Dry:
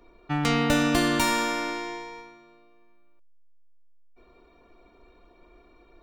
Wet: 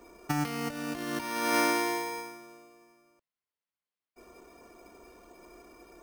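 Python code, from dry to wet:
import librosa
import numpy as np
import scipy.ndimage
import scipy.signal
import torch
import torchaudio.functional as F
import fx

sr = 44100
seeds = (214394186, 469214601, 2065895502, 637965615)

y = fx.highpass(x, sr, hz=130.0, slope=6)
y = fx.over_compress(y, sr, threshold_db=-29.0, ratio=-0.5)
y = np.repeat(scipy.signal.resample_poly(y, 1, 6), 6)[:len(y)]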